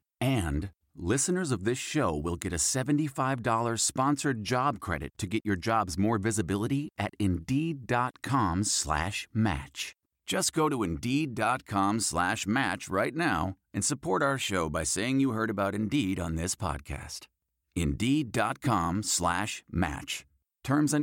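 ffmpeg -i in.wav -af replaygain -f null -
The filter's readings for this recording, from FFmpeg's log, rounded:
track_gain = +10.6 dB
track_peak = 0.133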